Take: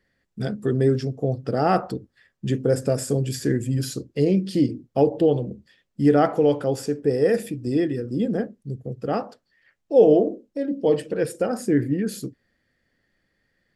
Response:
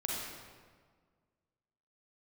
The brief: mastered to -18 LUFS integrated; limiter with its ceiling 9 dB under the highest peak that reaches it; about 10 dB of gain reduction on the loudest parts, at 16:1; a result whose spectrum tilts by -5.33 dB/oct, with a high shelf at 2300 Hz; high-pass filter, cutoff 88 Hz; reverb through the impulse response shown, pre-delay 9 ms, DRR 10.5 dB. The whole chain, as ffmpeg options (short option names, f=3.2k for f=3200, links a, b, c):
-filter_complex "[0:a]highpass=88,highshelf=f=2.3k:g=7.5,acompressor=threshold=-19dB:ratio=16,alimiter=limit=-19.5dB:level=0:latency=1,asplit=2[a][b];[1:a]atrim=start_sample=2205,adelay=9[c];[b][c]afir=irnorm=-1:irlink=0,volume=-14.5dB[d];[a][d]amix=inputs=2:normalize=0,volume=11dB"